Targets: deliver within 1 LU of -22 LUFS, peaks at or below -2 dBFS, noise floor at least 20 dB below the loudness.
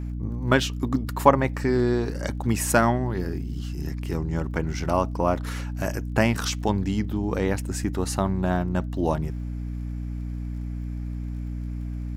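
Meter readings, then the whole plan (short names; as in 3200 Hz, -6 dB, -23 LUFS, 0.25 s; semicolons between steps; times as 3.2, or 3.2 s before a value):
ticks 37/s; hum 60 Hz; harmonics up to 300 Hz; hum level -28 dBFS; loudness -26.0 LUFS; peak -1.5 dBFS; loudness target -22.0 LUFS
-> de-click; de-hum 60 Hz, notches 5; gain +4 dB; limiter -2 dBFS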